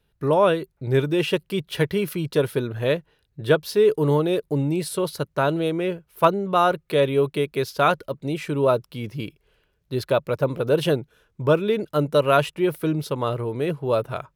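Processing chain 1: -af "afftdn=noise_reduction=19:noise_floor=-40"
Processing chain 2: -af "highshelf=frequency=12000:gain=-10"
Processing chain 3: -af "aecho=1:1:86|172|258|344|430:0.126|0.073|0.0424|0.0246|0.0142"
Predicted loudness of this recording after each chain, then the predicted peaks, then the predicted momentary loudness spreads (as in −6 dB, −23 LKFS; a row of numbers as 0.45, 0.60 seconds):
−23.0, −23.0, −23.0 LKFS; −3.5, −4.0, −4.0 dBFS; 9, 9, 9 LU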